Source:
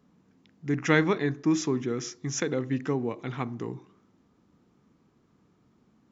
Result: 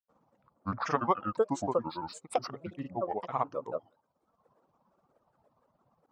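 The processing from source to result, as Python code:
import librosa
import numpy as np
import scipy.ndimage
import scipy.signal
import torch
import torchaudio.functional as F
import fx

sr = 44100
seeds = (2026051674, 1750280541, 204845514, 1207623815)

y = fx.dereverb_blind(x, sr, rt60_s=0.97)
y = fx.granulator(y, sr, seeds[0], grain_ms=100.0, per_s=17.0, spray_ms=100.0, spread_st=7)
y = fx.band_shelf(y, sr, hz=800.0, db=15.5, octaves=1.7)
y = y * librosa.db_to_amplitude(-7.5)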